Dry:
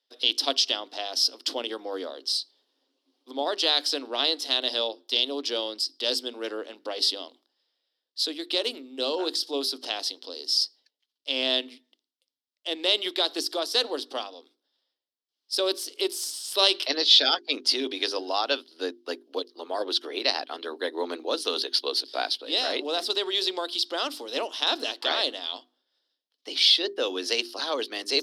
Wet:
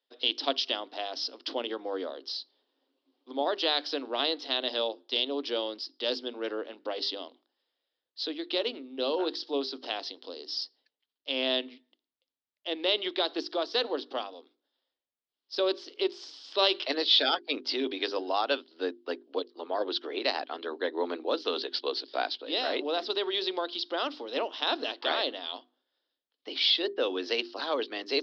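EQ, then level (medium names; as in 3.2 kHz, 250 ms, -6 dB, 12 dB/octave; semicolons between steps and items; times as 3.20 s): low-pass 5.7 kHz 24 dB/octave; distance through air 210 m; 0.0 dB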